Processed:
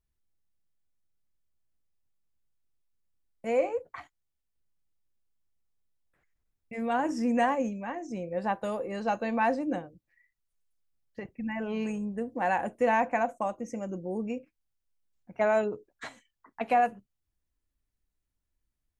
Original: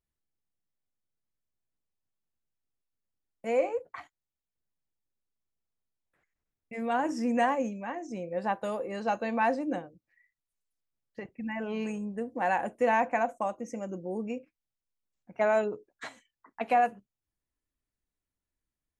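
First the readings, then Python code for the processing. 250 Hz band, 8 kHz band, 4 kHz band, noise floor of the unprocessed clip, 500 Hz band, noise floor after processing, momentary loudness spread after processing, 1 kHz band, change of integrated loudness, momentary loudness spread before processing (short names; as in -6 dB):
+1.5 dB, 0.0 dB, 0.0 dB, under -85 dBFS, +0.5 dB, -83 dBFS, 16 LU, 0.0 dB, +0.5 dB, 16 LU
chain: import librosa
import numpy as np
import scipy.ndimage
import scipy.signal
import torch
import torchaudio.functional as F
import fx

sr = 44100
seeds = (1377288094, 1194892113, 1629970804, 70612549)

y = fx.low_shelf(x, sr, hz=98.0, db=11.0)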